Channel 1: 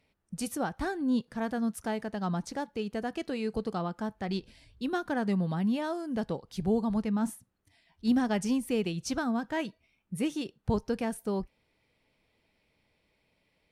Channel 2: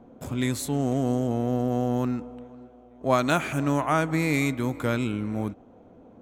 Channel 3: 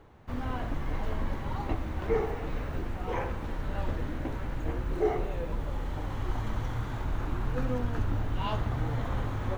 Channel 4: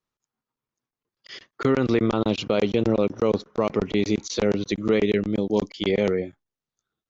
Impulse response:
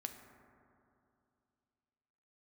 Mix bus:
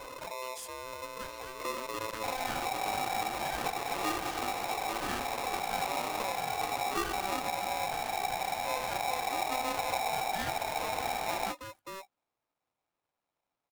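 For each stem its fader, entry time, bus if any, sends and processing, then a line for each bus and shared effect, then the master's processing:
−12.5 dB, 0.60 s, no bus, no send, running median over 25 samples
−16.0 dB, 0.00 s, bus A, send −19 dB, gate on every frequency bin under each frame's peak −20 dB strong; parametric band 550 Hz −13.5 dB 0.21 octaves; envelope flattener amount 70%; automatic ducking −10 dB, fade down 1.05 s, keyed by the fourth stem
−1.5 dB, 1.95 s, bus A, send −8.5 dB, no processing
−15.0 dB, 0.00 s, bus A, no send, no processing
bus A: 0.0 dB, downward compressor, threshold −34 dBFS, peak gain reduction 11 dB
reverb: on, RT60 2.6 s, pre-delay 4 ms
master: ring modulator with a square carrier 770 Hz

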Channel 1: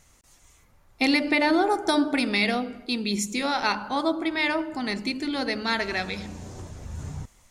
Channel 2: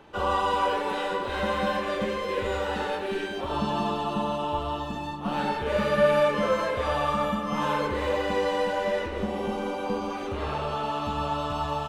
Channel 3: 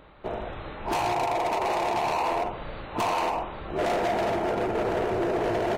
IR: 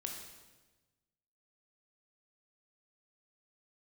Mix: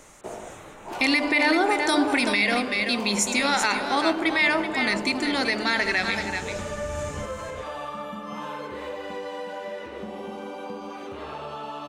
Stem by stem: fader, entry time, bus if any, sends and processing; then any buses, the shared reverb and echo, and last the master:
+1.5 dB, 0.00 s, no bus, no send, echo send −9 dB, octave-band graphic EQ 125/2,000/8,000 Hz −5/+7/+8 dB
−3.5 dB, 0.80 s, bus A, no send, no echo send, mains-hum notches 50/100/150/200 Hz
+0.5 dB, 0.00 s, bus A, no send, no echo send, automatic ducking −7 dB, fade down 0.85 s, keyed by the first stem
bus A: 0.0 dB, high-pass filter 130 Hz 12 dB per octave; downward compressor 3 to 1, threshold −32 dBFS, peak gain reduction 9.5 dB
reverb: not used
echo: single-tap delay 381 ms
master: brickwall limiter −12 dBFS, peak gain reduction 7.5 dB

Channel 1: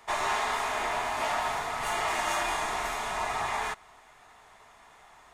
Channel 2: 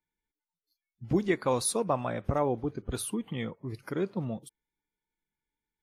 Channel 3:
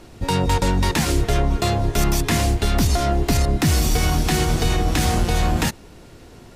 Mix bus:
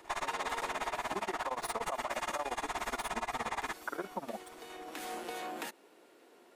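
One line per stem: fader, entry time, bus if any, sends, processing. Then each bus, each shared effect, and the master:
+0.5 dB, 0.00 s, bus A, no send, no processing
−4.0 dB, 0.00 s, bus A, no send, running median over 3 samples; high-pass filter 230 Hz 24 dB per octave; flat-topped bell 1,000 Hz +13 dB
−12.0 dB, 0.00 s, no bus, no send, high-pass filter 320 Hz 24 dB per octave; parametric band 5,600 Hz −7 dB 1.1 octaves; downward compressor 2.5 to 1, threshold −26 dBFS, peak gain reduction 5 dB; automatic ducking −11 dB, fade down 0.30 s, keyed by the second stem
bus A: 0.0 dB, amplitude tremolo 17 Hz, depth 97%; brickwall limiter −21 dBFS, peak gain reduction 10.5 dB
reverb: not used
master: downward compressor, threshold −32 dBFS, peak gain reduction 6 dB

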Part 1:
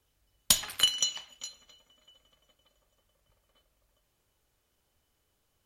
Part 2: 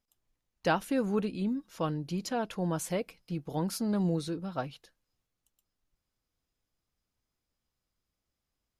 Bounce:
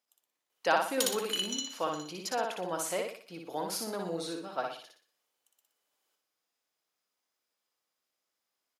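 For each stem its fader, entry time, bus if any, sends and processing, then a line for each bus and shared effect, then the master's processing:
−1.5 dB, 0.50 s, no send, echo send −8.5 dB, automatic ducking −9 dB, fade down 1.15 s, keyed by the second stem
+1.5 dB, 0.00 s, no send, echo send −3.5 dB, no processing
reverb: not used
echo: repeating echo 60 ms, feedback 40%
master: high-pass filter 500 Hz 12 dB per octave

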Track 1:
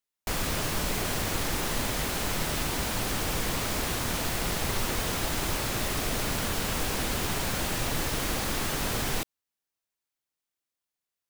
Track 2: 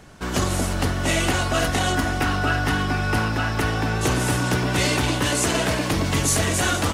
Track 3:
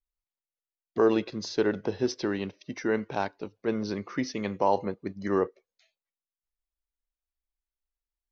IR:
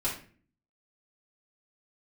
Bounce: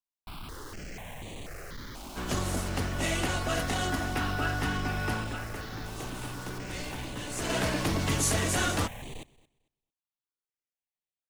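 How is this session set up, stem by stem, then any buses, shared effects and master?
−6.5 dB, 0.00 s, no send, echo send −21.5 dB, high-shelf EQ 6,500 Hz −10.5 dB; gain into a clipping stage and back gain 30 dB; step-sequenced phaser 4.1 Hz 470–5,200 Hz
0:05.07 −8.5 dB → 0:05.59 −18 dB → 0:07.28 −18 dB → 0:07.56 −6.5 dB, 1.95 s, no send, no echo send, no processing
muted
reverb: not used
echo: repeating echo 224 ms, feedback 19%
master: no processing

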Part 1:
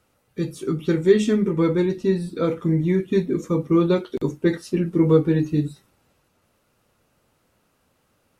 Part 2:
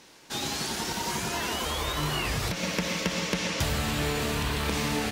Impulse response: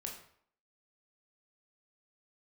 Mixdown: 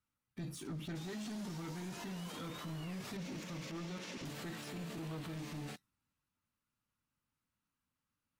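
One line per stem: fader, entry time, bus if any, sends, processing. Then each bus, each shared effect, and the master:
−16.5 dB, 0.00 s, no send, flat-topped bell 520 Hz −11.5 dB 1.3 octaves; leveller curve on the samples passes 3
+1.0 dB, 0.65 s, no send, high-pass filter 140 Hz 24 dB per octave; automatic ducking −12 dB, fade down 1.00 s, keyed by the first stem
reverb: not used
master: brickwall limiter −37.5 dBFS, peak gain reduction 16 dB

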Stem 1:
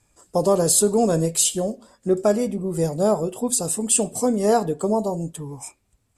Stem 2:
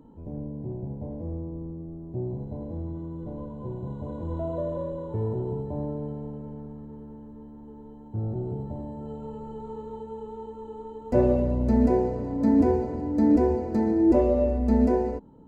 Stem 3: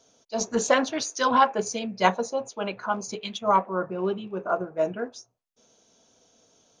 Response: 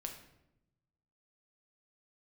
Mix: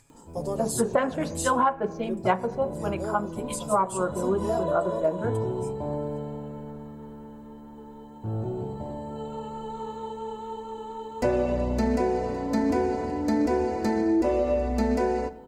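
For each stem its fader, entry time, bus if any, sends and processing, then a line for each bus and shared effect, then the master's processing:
−15.5 dB, 0.00 s, no send, comb filter 7.3 ms, depth 73%; upward compression, threshold −33 dBFS
+3.0 dB, 0.10 s, send −3.5 dB, tilt shelving filter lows −9 dB, about 840 Hz
+3.0 dB, 0.25 s, send −11.5 dB, low-pass filter 1,600 Hz 12 dB per octave; multiband upward and downward expander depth 70%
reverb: on, RT60 0.85 s, pre-delay 6 ms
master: downward compressor 6 to 1, threshold −20 dBFS, peak gain reduction 14 dB

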